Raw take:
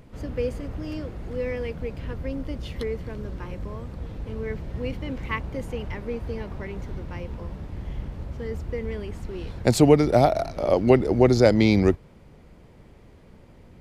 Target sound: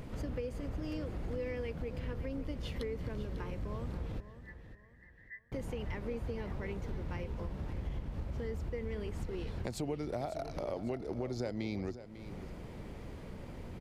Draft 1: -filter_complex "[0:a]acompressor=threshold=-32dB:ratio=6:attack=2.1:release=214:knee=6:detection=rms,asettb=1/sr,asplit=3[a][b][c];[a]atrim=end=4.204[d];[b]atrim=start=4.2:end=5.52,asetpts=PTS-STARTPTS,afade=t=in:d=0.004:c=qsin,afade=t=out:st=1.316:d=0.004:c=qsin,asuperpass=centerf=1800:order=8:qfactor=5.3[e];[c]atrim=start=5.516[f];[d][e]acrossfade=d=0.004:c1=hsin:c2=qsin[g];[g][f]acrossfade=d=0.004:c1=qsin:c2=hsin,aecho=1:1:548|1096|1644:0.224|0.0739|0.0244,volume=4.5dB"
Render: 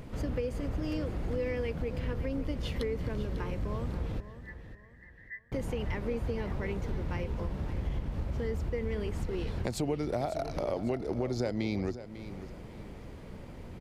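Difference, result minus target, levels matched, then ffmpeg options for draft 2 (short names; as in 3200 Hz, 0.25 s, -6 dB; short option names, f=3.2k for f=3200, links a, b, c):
compressor: peak gain reduction -5.5 dB
-filter_complex "[0:a]acompressor=threshold=-38.5dB:ratio=6:attack=2.1:release=214:knee=6:detection=rms,asettb=1/sr,asplit=3[a][b][c];[a]atrim=end=4.204[d];[b]atrim=start=4.2:end=5.52,asetpts=PTS-STARTPTS,afade=t=in:d=0.004:c=qsin,afade=t=out:st=1.316:d=0.004:c=qsin,asuperpass=centerf=1800:order=8:qfactor=5.3[e];[c]atrim=start=5.516[f];[d][e]acrossfade=d=0.004:c1=hsin:c2=qsin[g];[g][f]acrossfade=d=0.004:c1=qsin:c2=hsin,aecho=1:1:548|1096|1644:0.224|0.0739|0.0244,volume=4.5dB"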